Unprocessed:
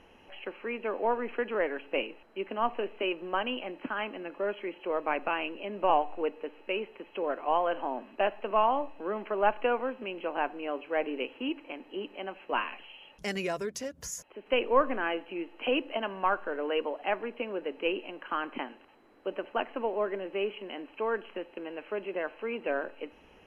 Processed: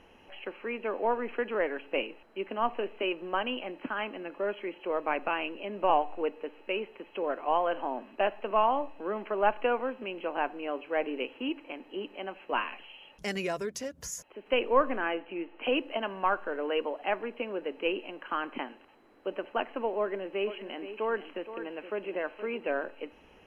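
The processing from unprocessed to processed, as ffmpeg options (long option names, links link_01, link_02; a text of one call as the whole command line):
ffmpeg -i in.wav -filter_complex "[0:a]asettb=1/sr,asplit=3[link_01][link_02][link_03];[link_01]atrim=end=15.014[link_04];[link_02]atrim=start=15.01:end=15.65,asetpts=PTS-STARTPTS,afade=type=in:duration=0.004:curve=qsin,afade=type=out:start_time=0.636:duration=0.004:curve=qsin,lowpass=frequency=3100:width=0.5412,lowpass=frequency=3100:width=1.3066[link_05];[link_03]atrim=start=15.646[link_06];[link_04][link_05]acrossfade=duration=0.004:curve1=hsin:curve2=qsin[link_07];[link_07][link_06]acrossfade=duration=0.004:curve1=qsin:curve2=hsin,asettb=1/sr,asplit=3[link_08][link_09][link_10];[link_08]atrim=end=20.004[link_11];[link_09]atrim=start=20:end=22.58,asetpts=PTS-STARTPTS,afade=type=in:duration=0.004:curve=qsin,afade=type=out:start_time=2.576:duration=0.004:curve=qsin,aecho=1:1:471:0.266,atrim=end_sample=113778[link_12];[link_10]atrim=start=22.576[link_13];[link_11][link_12]acrossfade=duration=0.004:curve1=hsin:curve2=qsin[link_14];[link_14][link_13]acrossfade=duration=0.004:curve1=qsin:curve2=hsin" out.wav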